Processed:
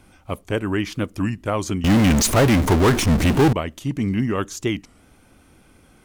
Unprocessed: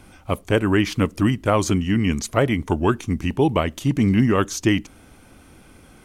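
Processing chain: 1.84–3.53 s: power-law waveshaper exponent 0.35; warped record 33 1/3 rpm, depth 160 cents; trim -4.5 dB

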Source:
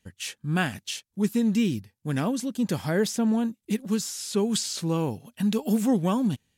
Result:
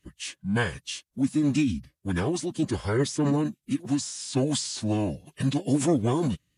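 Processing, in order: formant-preserving pitch shift -7.5 st

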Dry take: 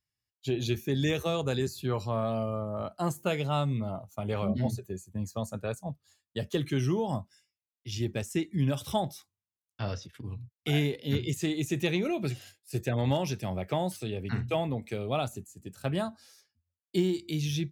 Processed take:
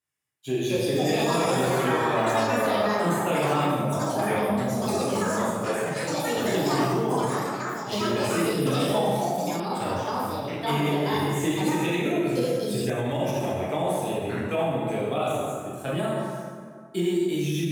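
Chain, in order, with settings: median filter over 3 samples; peaking EQ 4.8 kHz -11 dB 0.66 oct; plate-style reverb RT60 2 s, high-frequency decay 0.55×, DRR -7.5 dB; peak limiter -16 dBFS, peak gain reduction 9 dB; high-pass 180 Hz 12 dB/octave; ever faster or slower copies 370 ms, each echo +6 st, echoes 3; peaking EQ 10 kHz +7 dB 1.2 oct

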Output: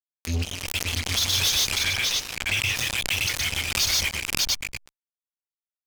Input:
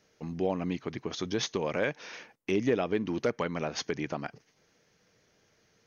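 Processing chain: reverb removal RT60 1.9 s; inverse Chebyshev band-stop 280–720 Hz, stop band 80 dB; phase dispersion highs, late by 45 ms, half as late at 1.6 kHz; tremolo 17 Hz, depth 35%; peaking EQ 82 Hz +12 dB 0.22 oct; multi-tap echo 61/121/152/594/691 ms -19/-3.5/-6/-5/-6 dB; fuzz box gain 52 dB, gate -50 dBFS; 1.83–2.76 s: treble shelf 6 kHz -5.5 dB; swell ahead of each attack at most 55 dB/s; trim -6.5 dB

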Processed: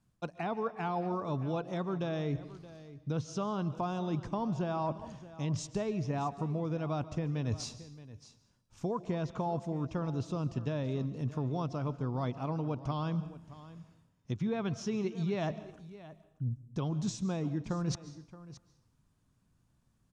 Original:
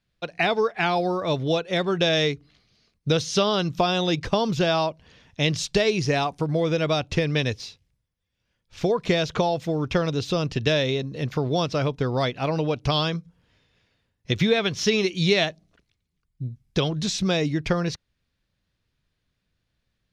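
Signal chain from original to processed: low-pass that closes with the level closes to 2.9 kHz, closed at -17.5 dBFS; graphic EQ 125/250/500/1000/2000/4000/8000 Hz +6/+7/-4/+8/-8/-9/+9 dB; reverse; compression 6:1, threshold -32 dBFS, peak gain reduction 19 dB; reverse; delay 623 ms -16.5 dB; on a send at -15 dB: reverberation RT60 0.70 s, pre-delay 100 ms; on the sum: endings held to a fixed fall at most 560 dB/s

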